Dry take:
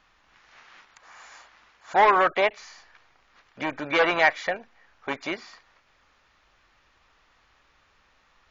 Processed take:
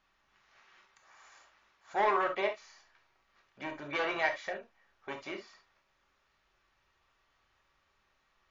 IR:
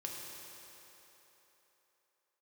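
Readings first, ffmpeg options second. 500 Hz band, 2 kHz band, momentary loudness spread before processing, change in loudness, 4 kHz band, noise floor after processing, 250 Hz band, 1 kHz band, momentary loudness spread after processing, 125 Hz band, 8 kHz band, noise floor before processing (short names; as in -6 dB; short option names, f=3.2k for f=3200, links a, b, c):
-9.5 dB, -11.0 dB, 16 LU, -10.5 dB, -10.5 dB, -75 dBFS, -10.0 dB, -10.5 dB, 16 LU, -10.0 dB, n/a, -64 dBFS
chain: -filter_complex "[1:a]atrim=start_sample=2205,afade=t=out:st=0.13:d=0.01,atrim=end_sample=6174,asetrate=48510,aresample=44100[a];[0:a][a]afir=irnorm=-1:irlink=0,volume=-7dB"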